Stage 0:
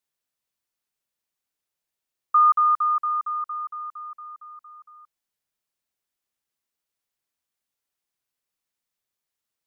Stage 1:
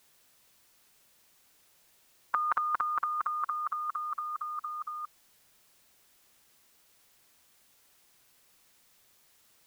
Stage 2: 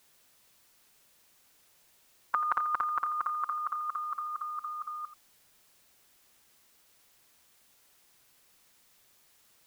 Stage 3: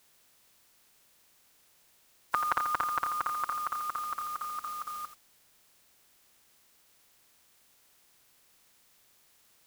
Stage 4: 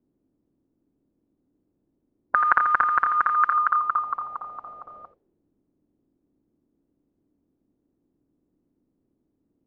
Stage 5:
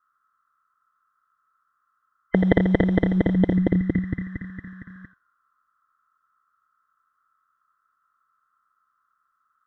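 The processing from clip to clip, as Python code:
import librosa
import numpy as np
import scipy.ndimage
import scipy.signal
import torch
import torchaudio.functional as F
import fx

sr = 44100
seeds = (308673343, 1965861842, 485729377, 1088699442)

y1 = fx.spectral_comp(x, sr, ratio=4.0)
y2 = y1 + 10.0 ** (-14.0 / 20.0) * np.pad(y1, (int(85 * sr / 1000.0), 0))[:len(y1)]
y3 = fx.spec_flatten(y2, sr, power=0.68)
y4 = fx.envelope_lowpass(y3, sr, base_hz=280.0, top_hz=1600.0, q=4.0, full_db=-29.0, direction='up')
y4 = y4 * librosa.db_to_amplitude(3.0)
y5 = fx.band_swap(y4, sr, width_hz=1000)
y5 = y5 * librosa.db_to_amplitude(1.5)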